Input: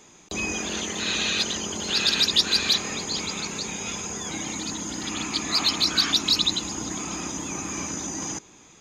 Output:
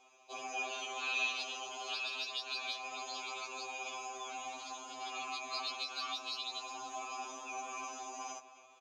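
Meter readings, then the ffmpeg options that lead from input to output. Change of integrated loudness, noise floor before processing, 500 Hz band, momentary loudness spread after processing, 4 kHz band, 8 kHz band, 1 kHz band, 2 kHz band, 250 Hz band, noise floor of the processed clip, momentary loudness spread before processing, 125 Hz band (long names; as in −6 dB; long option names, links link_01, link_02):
−15.5 dB, −52 dBFS, −12.5 dB, 8 LU, −18.0 dB, −19.0 dB, −5.0 dB, −9.5 dB, −25.5 dB, −61 dBFS, 11 LU, below −35 dB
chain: -filter_complex "[0:a]highshelf=frequency=4300:gain=9.5,aeval=exprs='0.944*(cos(1*acos(clip(val(0)/0.944,-1,1)))-cos(1*PI/2))+0.0237*(cos(6*acos(clip(val(0)/0.944,-1,1)))-cos(6*PI/2))':channel_layout=same,acrossover=split=110|2300[link_01][link_02][link_03];[link_01]acompressor=threshold=-45dB:ratio=6[link_04];[link_04][link_02][link_03]amix=inputs=3:normalize=0,alimiter=limit=-10.5dB:level=0:latency=1:release=300,asplit=3[link_05][link_06][link_07];[link_05]bandpass=frequency=730:width_type=q:width=8,volume=0dB[link_08];[link_06]bandpass=frequency=1090:width_type=q:width=8,volume=-6dB[link_09];[link_07]bandpass=frequency=2440:width_type=q:width=8,volume=-9dB[link_10];[link_08][link_09][link_10]amix=inputs=3:normalize=0,equalizer=frequency=140:width_type=o:width=0.88:gain=-9,asplit=2[link_11][link_12];[link_12]adelay=266,lowpass=frequency=2800:poles=1,volume=-14dB,asplit=2[link_13][link_14];[link_14]adelay=266,lowpass=frequency=2800:poles=1,volume=0.47,asplit=2[link_15][link_16];[link_16]adelay=266,lowpass=frequency=2800:poles=1,volume=0.47,asplit=2[link_17][link_18];[link_18]adelay=266,lowpass=frequency=2800:poles=1,volume=0.47[link_19];[link_13][link_15][link_17][link_19]amix=inputs=4:normalize=0[link_20];[link_11][link_20]amix=inputs=2:normalize=0,afftfilt=real='re*2.45*eq(mod(b,6),0)':imag='im*2.45*eq(mod(b,6),0)':win_size=2048:overlap=0.75,volume=4.5dB"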